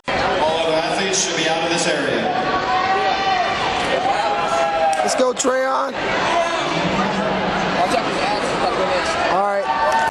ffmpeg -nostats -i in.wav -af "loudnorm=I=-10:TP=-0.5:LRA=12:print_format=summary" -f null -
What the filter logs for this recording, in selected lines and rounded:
Input Integrated:    -18.4 LUFS
Input True Peak:      -5.9 dBTP
Input LRA:             0.4 LU
Input Threshold:     -28.4 LUFS